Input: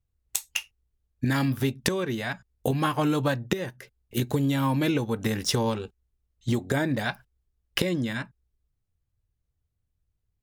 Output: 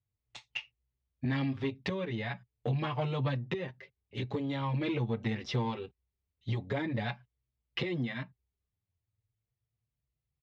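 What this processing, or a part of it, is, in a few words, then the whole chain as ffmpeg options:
barber-pole flanger into a guitar amplifier: -filter_complex "[0:a]asplit=2[a][b];[b]adelay=6.7,afreqshift=0.43[c];[a][c]amix=inputs=2:normalize=1,asoftclip=type=tanh:threshold=-21.5dB,highpass=77,equalizer=f=120:t=q:w=4:g=6,equalizer=f=300:t=q:w=4:g=-3,equalizer=f=1.5k:t=q:w=4:g=-7,equalizer=f=2.1k:t=q:w=4:g=4,lowpass=f=4k:w=0.5412,lowpass=f=4k:w=1.3066,volume=-2.5dB"

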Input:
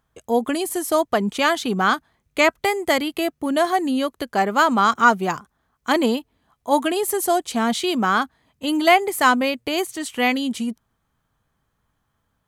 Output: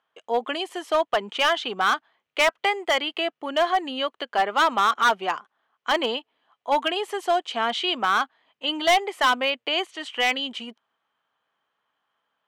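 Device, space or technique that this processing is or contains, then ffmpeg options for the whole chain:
megaphone: -af "highpass=560,lowpass=3.3k,equalizer=f=3k:t=o:w=0.32:g=8,asoftclip=type=hard:threshold=-14dB"

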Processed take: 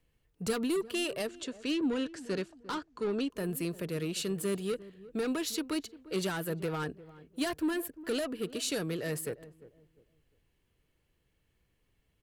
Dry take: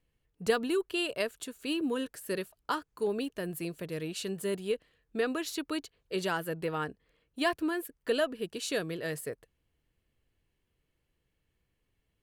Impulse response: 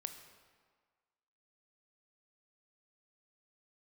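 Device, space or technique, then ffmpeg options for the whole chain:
one-band saturation: -filter_complex "[0:a]asettb=1/sr,asplit=3[a][b][c];[a]atrim=end=1.274[d];[b]atrim=start=1.27:end=3.3,asetpts=PTS-STARTPTS,afade=t=in:d=0.004:c=qsin,afade=t=out:st=2.026:d=0.004:c=qsin,lowpass=f=6.8k:w=0.5412,lowpass=f=6.8k:w=1.3066[e];[c]atrim=start=3.296[f];[d][e]acrossfade=d=0.004:c1=hsin:c2=qsin[g];[g][f]acrossfade=d=0.004:c1=qsin:c2=hsin,acrossover=split=290|4900[h][i][j];[i]asoftclip=type=tanh:threshold=-36.5dB[k];[h][k][j]amix=inputs=3:normalize=0,asplit=2[l][m];[m]adelay=350,lowpass=f=800:p=1,volume=-16.5dB,asplit=2[n][o];[o]adelay=350,lowpass=f=800:p=1,volume=0.31,asplit=2[p][q];[q]adelay=350,lowpass=f=800:p=1,volume=0.31[r];[l][n][p][r]amix=inputs=4:normalize=0,volume=3.5dB"

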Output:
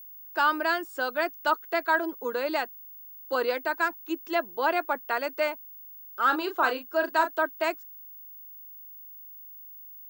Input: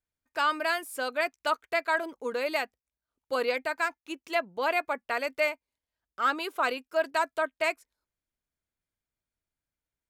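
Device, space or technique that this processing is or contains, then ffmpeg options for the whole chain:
old television with a line whistle: -filter_complex "[0:a]highpass=f=220:w=0.5412,highpass=f=220:w=1.3066,equalizer=f=340:t=q:w=4:g=9,equalizer=f=890:t=q:w=4:g=5,equalizer=f=1.5k:t=q:w=4:g=5,equalizer=f=2.3k:t=q:w=4:g=-7,lowpass=f=7.4k:w=0.5412,lowpass=f=7.4k:w=1.3066,aeval=exprs='val(0)+0.00708*sin(2*PI*15625*n/s)':c=same,asettb=1/sr,asplit=3[a][b][c];[a]atrim=end=6.264[d];[b]atrim=start=6.26:end=7.31,asetpts=PTS-STARTPTS,afade=t=in:d=0.004:c=qsin,afade=t=out:st=1.046:d=0.004:c=qsin,asplit=2[e][f];[f]adelay=35,volume=-8dB[g];[e][g]amix=inputs=2:normalize=0,atrim=end_sample=46305[h];[c]atrim=start=7.306[i];[d][h]acrossfade=d=0.004:c1=hsin:c2=qsin[j];[j][i]acrossfade=d=0.004:c1=qsin:c2=hsin"

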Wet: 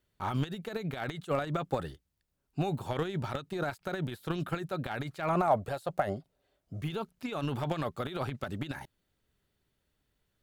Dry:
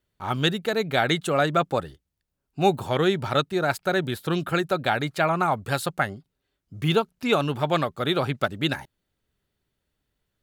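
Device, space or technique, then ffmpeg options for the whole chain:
de-esser from a sidechain: -filter_complex "[0:a]asettb=1/sr,asplit=3[a][b][c];[a]atrim=end=5.354[d];[b]atrim=start=5.35:end=6.82,asetpts=PTS-STARTPTS,afade=t=in:d=0.004:c=qsin,afade=t=out:st=1.466:d=0.004:c=qsin,equalizer=f=630:w=1.8:g=13.5[e];[c]atrim=start=6.816[f];[d][e]acrossfade=d=0.004:c1=hsin:c2=qsin[g];[g][f]acrossfade=d=0.004:c1=qsin:c2=hsin,asplit=2[h][i];[i]highpass=6.3k,apad=whole_len=459564[j];[h][j]sidechaincompress=threshold=-54dB:ratio=12:attack=0.84:release=33"

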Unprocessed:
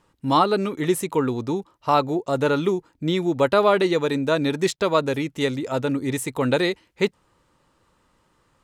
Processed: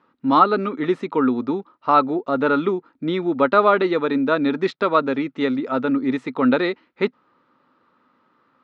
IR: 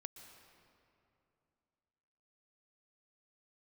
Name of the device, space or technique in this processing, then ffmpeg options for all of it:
kitchen radio: -af "highpass=210,equalizer=f=250:t=q:w=4:g=10,equalizer=f=1.3k:t=q:w=4:g=9,equalizer=f=3k:t=q:w=4:g=-5,lowpass=f=3.8k:w=0.5412,lowpass=f=3.8k:w=1.3066"

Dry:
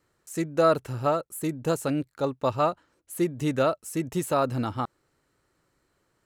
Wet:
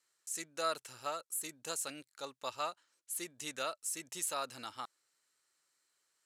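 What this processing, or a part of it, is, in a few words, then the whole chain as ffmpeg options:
piezo pickup straight into a mixer: -af "lowpass=8.5k,aderivative,volume=4dB"

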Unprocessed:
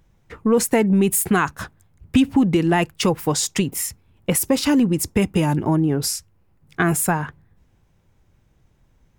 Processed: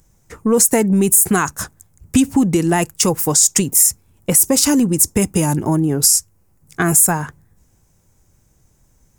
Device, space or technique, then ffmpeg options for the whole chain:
over-bright horn tweeter: -af "highshelf=f=4.9k:t=q:w=1.5:g=12.5,alimiter=limit=-3.5dB:level=0:latency=1:release=66,volume=2dB"

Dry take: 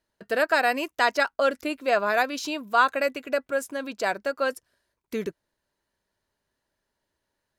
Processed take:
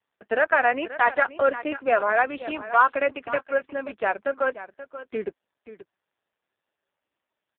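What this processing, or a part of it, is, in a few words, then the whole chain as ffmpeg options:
satellite phone: -filter_complex "[0:a]asplit=3[a][b][c];[a]afade=t=out:st=1.53:d=0.02[d];[b]highpass=150,afade=t=in:st=1.53:d=0.02,afade=t=out:st=3.59:d=0.02[e];[c]afade=t=in:st=3.59:d=0.02[f];[d][e][f]amix=inputs=3:normalize=0,highpass=310,lowpass=3k,aecho=1:1:531:0.2,volume=3dB" -ar 8000 -c:a libopencore_amrnb -b:a 5150

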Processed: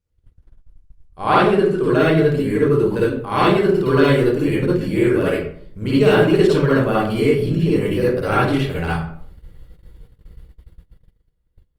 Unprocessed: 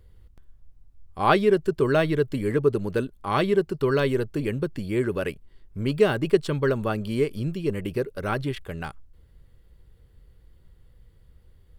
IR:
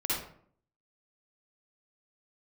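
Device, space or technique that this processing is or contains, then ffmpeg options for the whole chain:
speakerphone in a meeting room: -filter_complex "[0:a]bandreject=f=50:t=h:w=6,bandreject=f=100:t=h:w=6,bandreject=f=150:t=h:w=6,bandreject=f=200:t=h:w=6,bandreject=f=250:t=h:w=6,bandreject=f=300:t=h:w=6,bandreject=f=350:t=h:w=6,bandreject=f=400:t=h:w=6[a];[1:a]atrim=start_sample=2205[b];[a][b]afir=irnorm=-1:irlink=0,dynaudnorm=f=360:g=9:m=6.5dB,agate=range=-23dB:threshold=-39dB:ratio=16:detection=peak" -ar 48000 -c:a libopus -b:a 32k

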